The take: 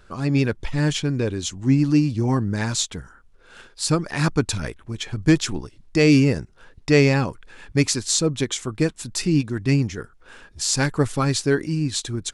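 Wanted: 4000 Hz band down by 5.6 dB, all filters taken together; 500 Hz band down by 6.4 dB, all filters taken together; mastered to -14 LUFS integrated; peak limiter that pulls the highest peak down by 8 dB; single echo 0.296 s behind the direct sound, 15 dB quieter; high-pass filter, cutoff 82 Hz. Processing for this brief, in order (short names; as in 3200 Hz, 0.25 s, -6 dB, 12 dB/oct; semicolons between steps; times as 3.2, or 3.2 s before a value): HPF 82 Hz; bell 500 Hz -8 dB; bell 4000 Hz -7 dB; limiter -15.5 dBFS; echo 0.296 s -15 dB; gain +12.5 dB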